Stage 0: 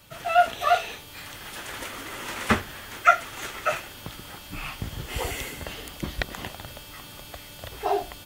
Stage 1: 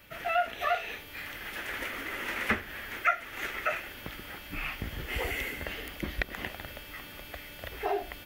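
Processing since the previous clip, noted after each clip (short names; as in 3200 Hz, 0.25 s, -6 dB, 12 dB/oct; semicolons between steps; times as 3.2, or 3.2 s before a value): graphic EQ 125/1000/2000/4000/8000 Hz -8/-6/+7/-5/-11 dB; compressor 2:1, threshold -29 dBFS, peak gain reduction 10 dB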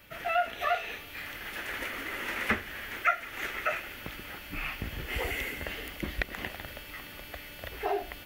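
thin delay 0.17 s, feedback 83%, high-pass 2500 Hz, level -14.5 dB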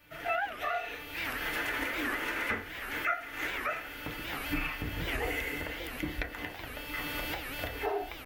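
recorder AGC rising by 20 dB/s; FDN reverb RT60 0.4 s, low-frequency decay 0.75×, high-frequency decay 0.25×, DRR 0.5 dB; record warp 78 rpm, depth 250 cents; gain -7.5 dB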